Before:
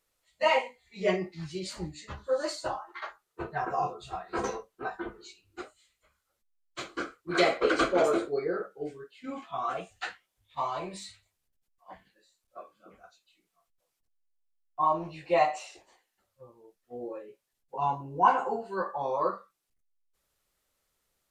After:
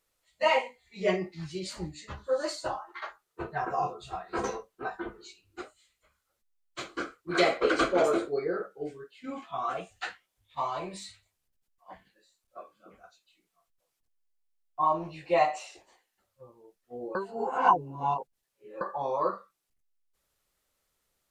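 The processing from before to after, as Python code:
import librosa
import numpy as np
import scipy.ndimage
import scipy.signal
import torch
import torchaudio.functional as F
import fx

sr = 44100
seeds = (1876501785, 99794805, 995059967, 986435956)

y = fx.edit(x, sr, fx.reverse_span(start_s=17.15, length_s=1.66), tone=tone)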